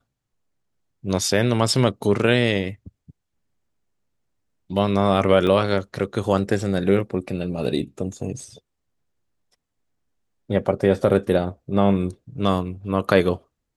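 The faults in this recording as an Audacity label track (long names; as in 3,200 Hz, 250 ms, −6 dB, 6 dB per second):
5.470000	5.470000	drop-out 2.8 ms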